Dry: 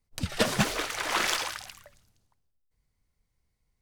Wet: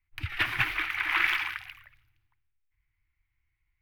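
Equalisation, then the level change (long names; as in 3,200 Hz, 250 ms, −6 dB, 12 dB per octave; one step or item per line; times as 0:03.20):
drawn EQ curve 120 Hz 0 dB, 200 Hz −29 dB, 320 Hz −2 dB, 520 Hz −29 dB, 770 Hz −7 dB, 2,300 Hz +10 dB, 4,400 Hz −11 dB, 7,400 Hz −23 dB, 14,000 Hz −4 dB
−1.5 dB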